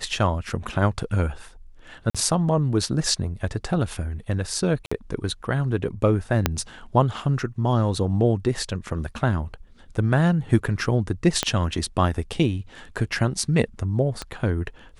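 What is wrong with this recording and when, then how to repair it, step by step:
2.1–2.15 gap 46 ms
4.86–4.92 gap 55 ms
6.46 pop -3 dBFS
11.43 pop -6 dBFS
14.22 pop -15 dBFS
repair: de-click; interpolate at 2.1, 46 ms; interpolate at 4.86, 55 ms

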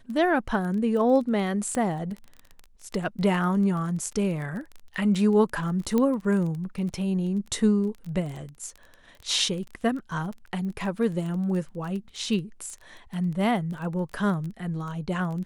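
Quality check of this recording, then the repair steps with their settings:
crackle 20/s -33 dBFS
1.75 pop -17 dBFS
5.98 pop -13 dBFS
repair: de-click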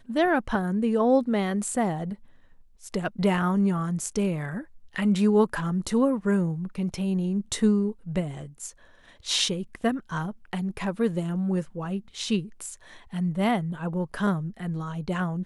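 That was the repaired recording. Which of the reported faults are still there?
none

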